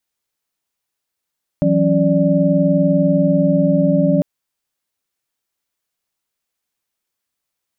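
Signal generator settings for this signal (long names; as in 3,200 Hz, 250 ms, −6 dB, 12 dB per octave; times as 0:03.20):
held notes E3/F#3/C#4/D5 sine, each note −17 dBFS 2.60 s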